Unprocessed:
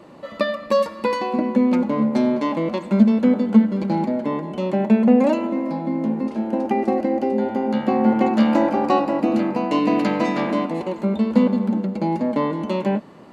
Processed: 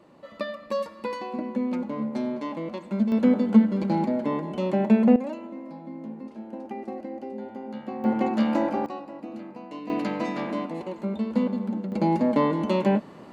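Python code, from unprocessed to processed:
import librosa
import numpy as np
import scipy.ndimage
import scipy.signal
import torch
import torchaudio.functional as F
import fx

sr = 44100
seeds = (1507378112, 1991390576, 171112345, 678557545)

y = fx.gain(x, sr, db=fx.steps((0.0, -10.0), (3.12, -3.0), (5.16, -15.0), (8.04, -6.5), (8.86, -18.5), (9.9, -8.0), (11.92, -0.5)))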